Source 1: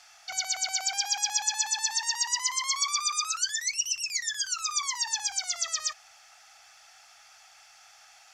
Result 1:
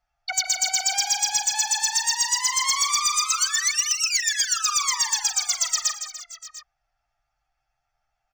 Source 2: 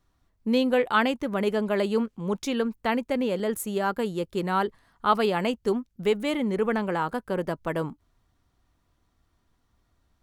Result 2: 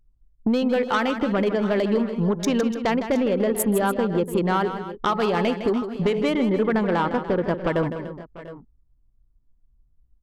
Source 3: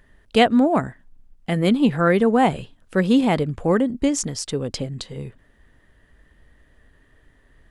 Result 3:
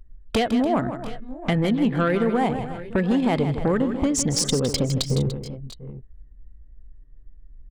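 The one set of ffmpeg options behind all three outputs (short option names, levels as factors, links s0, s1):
-filter_complex "[0:a]bandreject=f=427.1:t=h:w=4,bandreject=f=854.2:t=h:w=4,bandreject=f=1281.3:t=h:w=4,bandreject=f=1708.4:t=h:w=4,bandreject=f=2135.5:t=h:w=4,bandreject=f=2562.6:t=h:w=4,bandreject=f=2989.7:t=h:w=4,bandreject=f=3416.8:t=h:w=4,bandreject=f=3843.9:t=h:w=4,bandreject=f=4271:t=h:w=4,bandreject=f=4698.1:t=h:w=4,bandreject=f=5125.2:t=h:w=4,bandreject=f=5552.3:t=h:w=4,bandreject=f=5979.4:t=h:w=4,bandreject=f=6406.5:t=h:w=4,bandreject=f=6833.6:t=h:w=4,anlmdn=15.8,acompressor=threshold=0.0282:ratio=10,aeval=exprs='0.178*sin(PI/2*3.16*val(0)/0.178)':c=same,asplit=2[s0][s1];[s1]aecho=0:1:158|292|693|716:0.316|0.188|0.106|0.126[s2];[s0][s2]amix=inputs=2:normalize=0"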